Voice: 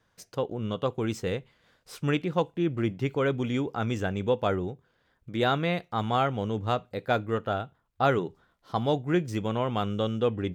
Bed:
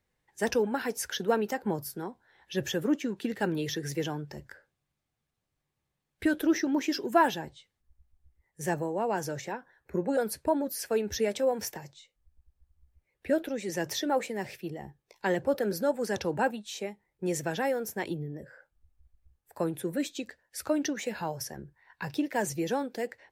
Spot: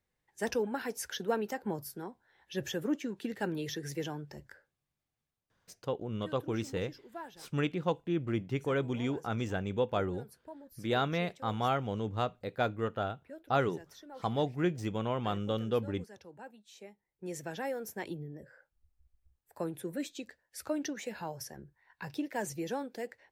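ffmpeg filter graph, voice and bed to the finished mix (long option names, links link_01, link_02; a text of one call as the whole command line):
ffmpeg -i stem1.wav -i stem2.wav -filter_complex "[0:a]adelay=5500,volume=-5dB[link_01];[1:a]volume=10.5dB,afade=type=out:start_time=5.2:duration=0.6:silence=0.149624,afade=type=in:start_time=16.48:duration=1.43:silence=0.16788[link_02];[link_01][link_02]amix=inputs=2:normalize=0" out.wav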